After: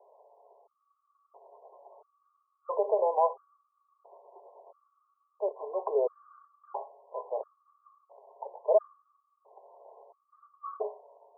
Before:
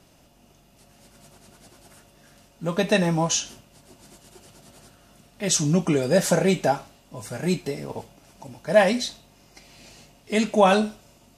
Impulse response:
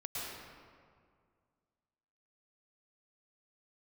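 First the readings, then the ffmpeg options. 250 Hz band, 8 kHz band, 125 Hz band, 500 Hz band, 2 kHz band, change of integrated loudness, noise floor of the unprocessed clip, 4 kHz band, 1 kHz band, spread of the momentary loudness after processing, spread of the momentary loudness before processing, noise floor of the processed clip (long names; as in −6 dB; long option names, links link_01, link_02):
below −25 dB, below −40 dB, below −40 dB, −7.0 dB, below −40 dB, −9.0 dB, −57 dBFS, below −40 dB, −7.5 dB, 18 LU, 16 LU, −78 dBFS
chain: -af "alimiter=limit=-16.5dB:level=0:latency=1:release=48,asuperpass=centerf=690:order=20:qfactor=0.91,afftfilt=real='re*gt(sin(2*PI*0.74*pts/sr)*(1-2*mod(floor(b*sr/1024/1100),2)),0)':imag='im*gt(sin(2*PI*0.74*pts/sr)*(1-2*mod(floor(b*sr/1024/1100),2)),0)':win_size=1024:overlap=0.75,volume=4dB"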